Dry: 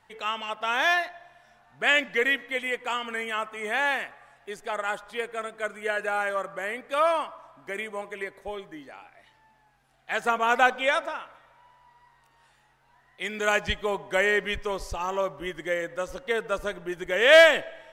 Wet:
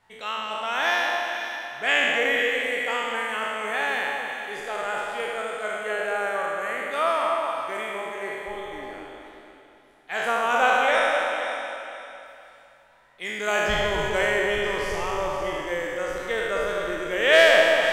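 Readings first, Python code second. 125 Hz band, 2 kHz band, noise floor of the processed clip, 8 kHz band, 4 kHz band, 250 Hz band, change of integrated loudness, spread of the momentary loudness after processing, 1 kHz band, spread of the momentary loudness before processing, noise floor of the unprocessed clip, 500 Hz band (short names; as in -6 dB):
+3.5 dB, +2.0 dB, -53 dBFS, +3.0 dB, +2.5 dB, +1.5 dB, +1.5 dB, 13 LU, +3.0 dB, 14 LU, -63 dBFS, +2.0 dB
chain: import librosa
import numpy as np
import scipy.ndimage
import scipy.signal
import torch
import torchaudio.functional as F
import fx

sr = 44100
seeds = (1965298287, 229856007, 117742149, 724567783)

y = fx.spec_trails(x, sr, decay_s=2.22)
y = fx.echo_alternate(y, sr, ms=252, hz=1200.0, feedback_pct=53, wet_db=-4.0)
y = F.gain(torch.from_numpy(y), -3.5).numpy()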